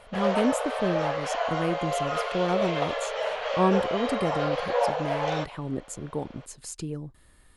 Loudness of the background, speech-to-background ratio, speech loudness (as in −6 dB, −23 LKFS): −28.5 LKFS, −2.5 dB, −31.0 LKFS